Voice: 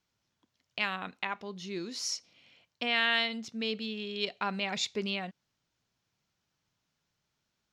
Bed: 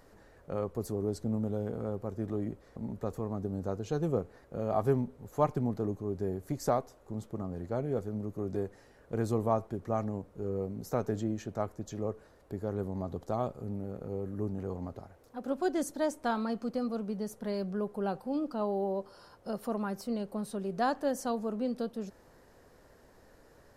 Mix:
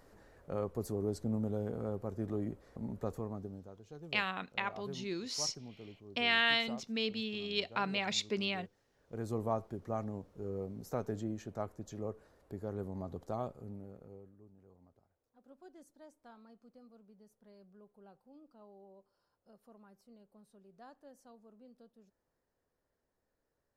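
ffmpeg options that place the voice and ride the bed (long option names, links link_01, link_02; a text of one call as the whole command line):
ffmpeg -i stem1.wav -i stem2.wav -filter_complex "[0:a]adelay=3350,volume=-1.5dB[link_01];[1:a]volume=10dB,afade=type=out:start_time=3.09:duration=0.6:silence=0.16788,afade=type=in:start_time=8.88:duration=0.53:silence=0.237137,afade=type=out:start_time=13.35:duration=1.03:silence=0.1[link_02];[link_01][link_02]amix=inputs=2:normalize=0" out.wav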